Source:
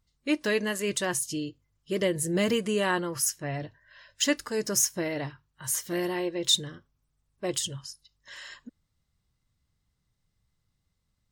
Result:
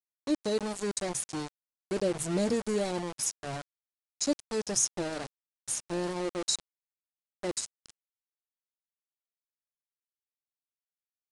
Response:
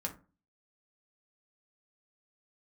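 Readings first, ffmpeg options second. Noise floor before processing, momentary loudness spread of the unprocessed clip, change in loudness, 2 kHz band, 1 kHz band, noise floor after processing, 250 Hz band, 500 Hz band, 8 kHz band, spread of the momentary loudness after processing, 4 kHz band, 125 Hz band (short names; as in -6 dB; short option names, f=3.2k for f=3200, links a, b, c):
-78 dBFS, 17 LU, -4.0 dB, -10.5 dB, -3.5 dB, under -85 dBFS, -3.0 dB, -2.5 dB, -3.0 dB, 11 LU, -7.5 dB, -4.0 dB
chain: -af "afftfilt=real='re*(1-between(b*sr/4096,900,3800))':imag='im*(1-between(b*sr/4096,900,3800))':win_size=4096:overlap=0.75,aeval=exprs='val(0)*gte(abs(val(0)),0.0299)':c=same,aresample=22050,aresample=44100,volume=-2dB"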